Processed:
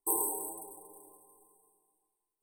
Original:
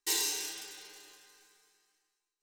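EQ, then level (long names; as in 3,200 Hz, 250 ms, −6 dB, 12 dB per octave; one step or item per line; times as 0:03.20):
dynamic equaliser 690 Hz, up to +5 dB, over −59 dBFS, Q 1.5
linear-phase brick-wall band-stop 1,100–8,000 Hz
+5.0 dB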